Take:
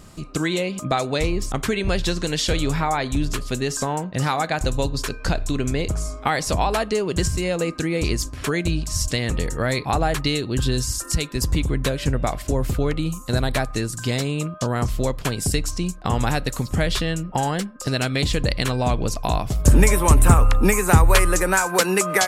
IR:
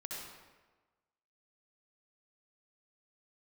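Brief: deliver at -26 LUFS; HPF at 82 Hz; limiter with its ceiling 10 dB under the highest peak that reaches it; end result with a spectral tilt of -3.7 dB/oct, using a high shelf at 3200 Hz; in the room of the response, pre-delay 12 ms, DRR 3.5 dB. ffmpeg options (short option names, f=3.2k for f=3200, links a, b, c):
-filter_complex "[0:a]highpass=82,highshelf=f=3.2k:g=5.5,alimiter=limit=-10dB:level=0:latency=1,asplit=2[a][b];[1:a]atrim=start_sample=2205,adelay=12[c];[b][c]afir=irnorm=-1:irlink=0,volume=-3dB[d];[a][d]amix=inputs=2:normalize=0,volume=-4.5dB"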